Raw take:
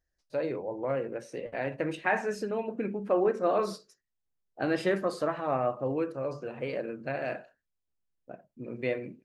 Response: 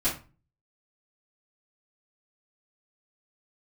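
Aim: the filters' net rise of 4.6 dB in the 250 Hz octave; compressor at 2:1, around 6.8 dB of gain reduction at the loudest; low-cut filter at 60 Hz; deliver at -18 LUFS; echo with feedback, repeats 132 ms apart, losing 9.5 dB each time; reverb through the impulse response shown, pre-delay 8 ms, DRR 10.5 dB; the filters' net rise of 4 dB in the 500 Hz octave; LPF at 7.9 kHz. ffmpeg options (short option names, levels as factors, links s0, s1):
-filter_complex "[0:a]highpass=60,lowpass=7900,equalizer=f=250:t=o:g=5,equalizer=f=500:t=o:g=3.5,acompressor=threshold=0.0316:ratio=2,aecho=1:1:132|264|396|528:0.335|0.111|0.0365|0.012,asplit=2[s0][s1];[1:a]atrim=start_sample=2205,adelay=8[s2];[s1][s2]afir=irnorm=-1:irlink=0,volume=0.106[s3];[s0][s3]amix=inputs=2:normalize=0,volume=4.73"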